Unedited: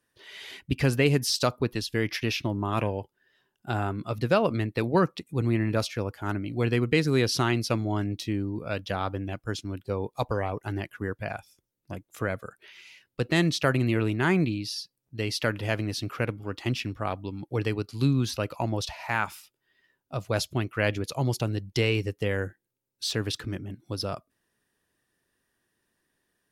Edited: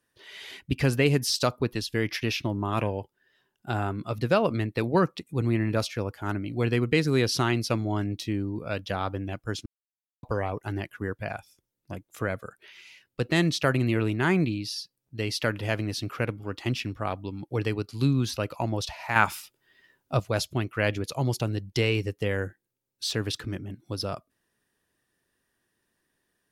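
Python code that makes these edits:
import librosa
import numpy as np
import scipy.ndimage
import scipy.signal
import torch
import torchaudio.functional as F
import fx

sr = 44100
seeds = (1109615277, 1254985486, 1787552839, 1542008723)

y = fx.edit(x, sr, fx.silence(start_s=9.66, length_s=0.57),
    fx.clip_gain(start_s=19.16, length_s=1.04, db=7.0), tone=tone)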